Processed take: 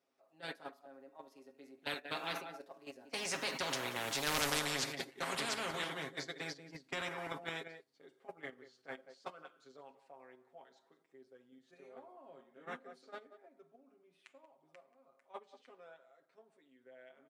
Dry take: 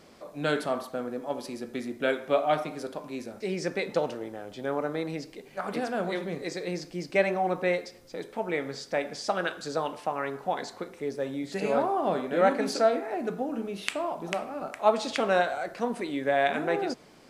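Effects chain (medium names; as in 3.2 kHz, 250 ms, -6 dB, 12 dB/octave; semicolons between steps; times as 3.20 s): Doppler pass-by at 4.43 s, 31 m/s, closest 3.2 m; gate -56 dBFS, range -23 dB; high-pass 130 Hz; tone controls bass -8 dB, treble -3 dB; comb 7.4 ms, depth 81%; in parallel at -1.5 dB: level held to a coarse grid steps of 18 dB; on the sum: saturation -25.5 dBFS, distortion -12 dB; on a send: delay 184 ms -20 dB; on the sum: spectrum-flattening compressor 4:1; trim +9.5 dB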